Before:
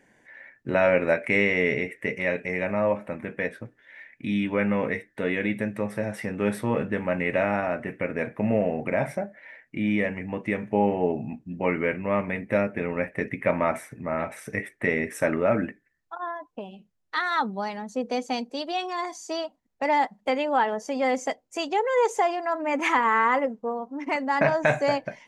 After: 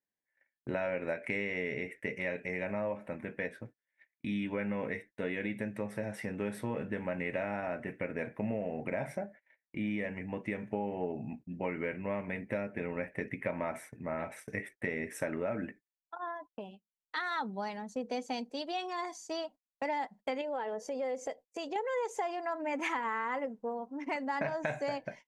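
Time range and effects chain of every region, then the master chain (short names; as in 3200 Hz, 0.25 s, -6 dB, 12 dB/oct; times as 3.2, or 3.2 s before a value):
20.41–21.76 bell 500 Hz +10.5 dB 0.56 oct + compressor 2:1, threshold -32 dBFS
whole clip: notch 1200 Hz, Q 11; gate -42 dBFS, range -31 dB; compressor, threshold -24 dBFS; gain -6.5 dB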